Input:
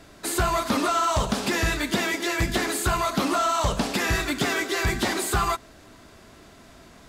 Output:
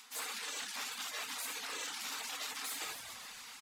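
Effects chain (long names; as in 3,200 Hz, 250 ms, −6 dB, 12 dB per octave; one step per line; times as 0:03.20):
low shelf with overshoot 690 Hz +7 dB, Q 3
time stretch by phase vocoder 0.51×
soft clipping −23.5 dBFS, distortion −8 dB
Chebyshev high-pass filter 320 Hz, order 5
gate on every frequency bin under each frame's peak −20 dB weak
on a send: echo with shifted repeats 138 ms, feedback 64%, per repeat −54 Hz, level −16 dB
on the sum: reverb whose tail is shaped and stops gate 110 ms flat, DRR 2.5 dB
reversed playback
downward compressor 6 to 1, threshold −47 dBFS, peak gain reduction 13 dB
reversed playback
reverb reduction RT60 0.54 s
level +9 dB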